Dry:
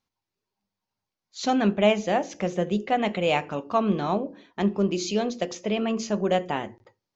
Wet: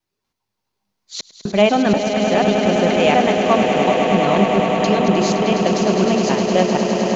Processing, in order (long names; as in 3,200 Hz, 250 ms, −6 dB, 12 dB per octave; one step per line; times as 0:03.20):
slices reordered back to front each 242 ms, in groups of 2
echo that builds up and dies away 103 ms, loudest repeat 8, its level −9 dB
level +6 dB